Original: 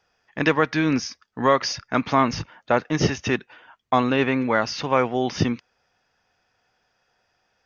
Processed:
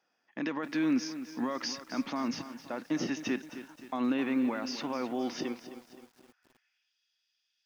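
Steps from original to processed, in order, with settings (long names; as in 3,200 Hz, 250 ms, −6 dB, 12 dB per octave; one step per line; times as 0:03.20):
parametric band 430 Hz −8 dB 0.24 octaves
brickwall limiter −16.5 dBFS, peak gain reduction 11 dB
high-pass filter sweep 260 Hz → 3,400 Hz, 0:05.27–0:06.97
feedback echo at a low word length 261 ms, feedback 55%, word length 7 bits, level −12 dB
level −9 dB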